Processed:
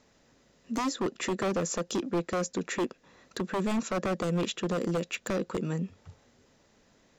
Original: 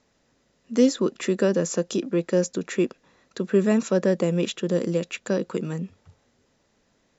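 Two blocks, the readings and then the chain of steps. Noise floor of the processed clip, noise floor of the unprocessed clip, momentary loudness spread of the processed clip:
-65 dBFS, -68 dBFS, 5 LU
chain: compressor 1.5:1, threshold -39 dBFS, peak gain reduction 9.5 dB; wavefolder -25.5 dBFS; gain +3 dB

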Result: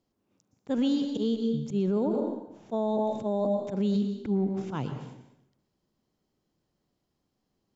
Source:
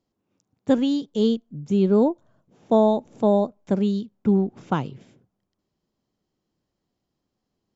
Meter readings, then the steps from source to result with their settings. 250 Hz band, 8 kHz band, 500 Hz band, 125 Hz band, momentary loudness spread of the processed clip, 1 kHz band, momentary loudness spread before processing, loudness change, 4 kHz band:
-6.0 dB, n/a, -7.5 dB, -5.5 dB, 8 LU, -8.0 dB, 9 LU, -6.5 dB, -5.0 dB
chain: auto swell 0.131 s; plate-style reverb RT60 0.82 s, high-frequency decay 0.9×, pre-delay 0.105 s, DRR 8 dB; limiter -19.5 dBFS, peak gain reduction 11.5 dB

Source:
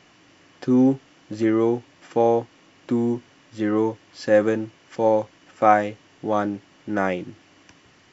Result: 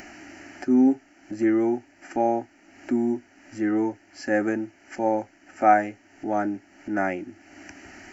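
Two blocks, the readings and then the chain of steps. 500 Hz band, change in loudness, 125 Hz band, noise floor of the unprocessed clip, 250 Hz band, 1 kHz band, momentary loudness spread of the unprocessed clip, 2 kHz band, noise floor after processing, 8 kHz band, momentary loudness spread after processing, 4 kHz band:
-5.5 dB, -2.5 dB, -9.0 dB, -55 dBFS, -1.0 dB, -1.0 dB, 14 LU, -0.5 dB, -57 dBFS, n/a, 23 LU, -6.5 dB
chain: upward compressor, threshold -29 dBFS; fixed phaser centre 720 Hz, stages 8

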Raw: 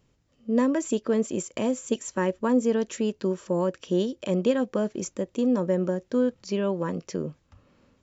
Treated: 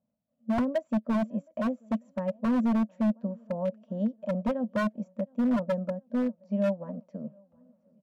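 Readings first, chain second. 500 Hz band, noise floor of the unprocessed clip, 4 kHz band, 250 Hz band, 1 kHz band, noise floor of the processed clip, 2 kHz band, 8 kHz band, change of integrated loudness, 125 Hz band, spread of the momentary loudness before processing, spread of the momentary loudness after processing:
-6.5 dB, -68 dBFS, under -10 dB, -2.0 dB, -2.0 dB, -78 dBFS, -2.5 dB, n/a, -3.0 dB, -3.5 dB, 7 LU, 9 LU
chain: double band-pass 370 Hz, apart 1.5 oct; on a send: feedback echo 0.718 s, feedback 53%, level -23 dB; on the sum: wavefolder -26.5 dBFS; upward expander 1.5:1, over -48 dBFS; gain +7 dB

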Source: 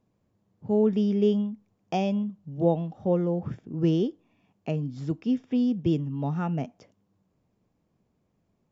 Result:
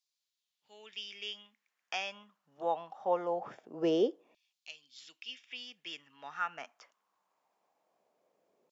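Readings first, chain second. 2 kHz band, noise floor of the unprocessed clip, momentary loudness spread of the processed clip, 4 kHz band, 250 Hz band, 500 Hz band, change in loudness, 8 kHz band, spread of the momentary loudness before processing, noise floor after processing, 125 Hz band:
+4.5 dB, -73 dBFS, 19 LU, +3.5 dB, -16.5 dB, -8.0 dB, -9.5 dB, n/a, 10 LU, under -85 dBFS, -27.5 dB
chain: LFO high-pass saw down 0.23 Hz 450–4500 Hz

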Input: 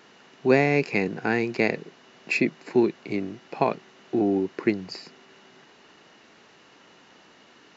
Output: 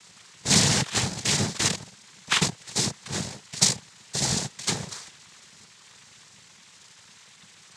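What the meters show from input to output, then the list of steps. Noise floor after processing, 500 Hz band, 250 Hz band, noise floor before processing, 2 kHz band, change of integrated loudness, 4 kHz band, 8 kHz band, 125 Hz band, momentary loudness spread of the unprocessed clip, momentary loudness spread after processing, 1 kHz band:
-53 dBFS, -12.5 dB, -7.0 dB, -55 dBFS, -2.5 dB, +0.5 dB, +16.5 dB, n/a, +4.0 dB, 13 LU, 13 LU, -3.0 dB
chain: FFT order left unsorted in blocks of 128 samples; noise vocoder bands 6; gain +7 dB

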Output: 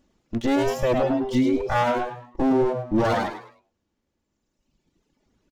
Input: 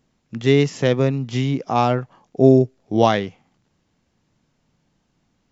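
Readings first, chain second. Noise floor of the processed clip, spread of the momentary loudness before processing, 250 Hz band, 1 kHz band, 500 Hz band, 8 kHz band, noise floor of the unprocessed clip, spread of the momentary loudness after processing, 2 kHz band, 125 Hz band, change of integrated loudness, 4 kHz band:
-78 dBFS, 11 LU, -3.0 dB, -2.5 dB, -5.0 dB, n/a, -68 dBFS, 9 LU, -1.5 dB, -11.0 dB, -4.5 dB, -6.5 dB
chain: minimum comb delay 3.5 ms; reverb removal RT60 1.9 s; low shelf 370 Hz +5 dB; frequency-shifting echo 0.104 s, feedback 30%, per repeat +120 Hz, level -6.5 dB; limiter -13 dBFS, peak gain reduction 11 dB

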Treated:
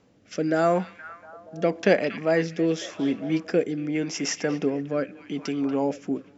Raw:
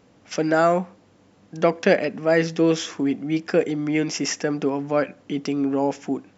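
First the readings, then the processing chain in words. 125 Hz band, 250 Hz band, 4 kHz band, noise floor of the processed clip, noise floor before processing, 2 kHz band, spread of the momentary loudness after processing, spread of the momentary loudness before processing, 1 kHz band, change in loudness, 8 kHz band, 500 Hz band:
-3.0 dB, -3.0 dB, -3.5 dB, -54 dBFS, -56 dBFS, -3.5 dB, 12 LU, 8 LU, -5.0 dB, -3.0 dB, n/a, -3.0 dB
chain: delay with a stepping band-pass 0.236 s, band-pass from 2800 Hz, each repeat -0.7 oct, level -9 dB; rotary speaker horn 0.85 Hz; gain -1.5 dB

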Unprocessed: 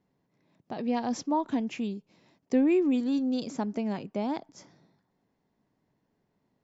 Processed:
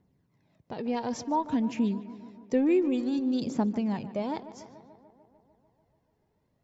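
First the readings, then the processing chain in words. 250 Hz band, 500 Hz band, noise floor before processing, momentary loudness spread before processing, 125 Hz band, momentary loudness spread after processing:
0.0 dB, +0.5 dB, -77 dBFS, 11 LU, +4.0 dB, 18 LU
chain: bell 67 Hz +10 dB 2.1 oct; phaser 0.56 Hz, delay 2.5 ms, feedback 43%; on a send: tape echo 0.147 s, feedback 77%, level -14 dB, low-pass 2500 Hz; on the sum: gain -1.5 dB

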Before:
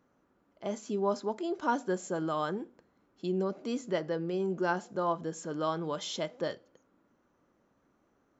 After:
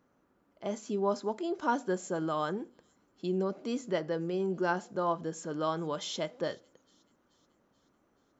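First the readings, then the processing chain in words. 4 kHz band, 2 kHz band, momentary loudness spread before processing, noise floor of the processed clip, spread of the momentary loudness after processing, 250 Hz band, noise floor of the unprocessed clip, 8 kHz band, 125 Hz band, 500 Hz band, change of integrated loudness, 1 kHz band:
0.0 dB, 0.0 dB, 8 LU, -72 dBFS, 8 LU, 0.0 dB, -72 dBFS, n/a, 0.0 dB, 0.0 dB, 0.0 dB, 0.0 dB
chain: thin delay 0.431 s, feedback 57%, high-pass 4100 Hz, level -23.5 dB

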